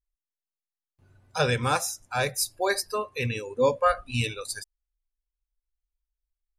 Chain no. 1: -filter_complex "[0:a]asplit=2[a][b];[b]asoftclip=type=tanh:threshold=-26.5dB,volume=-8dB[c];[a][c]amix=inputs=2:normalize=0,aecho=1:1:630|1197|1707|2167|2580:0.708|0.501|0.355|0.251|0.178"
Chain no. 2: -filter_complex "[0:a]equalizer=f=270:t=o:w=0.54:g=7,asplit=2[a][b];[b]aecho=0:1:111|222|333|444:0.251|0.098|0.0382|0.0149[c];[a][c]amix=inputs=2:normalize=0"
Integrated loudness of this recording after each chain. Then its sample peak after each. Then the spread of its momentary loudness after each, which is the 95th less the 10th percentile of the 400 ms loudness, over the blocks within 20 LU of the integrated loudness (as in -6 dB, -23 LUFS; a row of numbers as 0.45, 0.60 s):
-24.0, -26.5 LUFS; -8.0, -10.5 dBFS; 10, 11 LU